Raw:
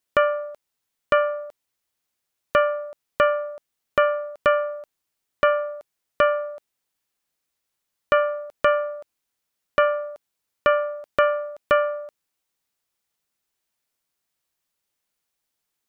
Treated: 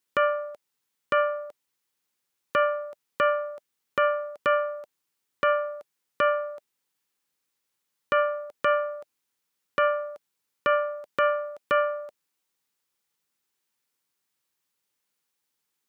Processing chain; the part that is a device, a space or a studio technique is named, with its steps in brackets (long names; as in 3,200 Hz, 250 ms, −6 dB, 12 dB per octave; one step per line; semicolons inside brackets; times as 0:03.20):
PA system with an anti-feedback notch (high-pass filter 110 Hz; Butterworth band-reject 660 Hz, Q 4.5; brickwall limiter −12.5 dBFS, peak gain reduction 5 dB)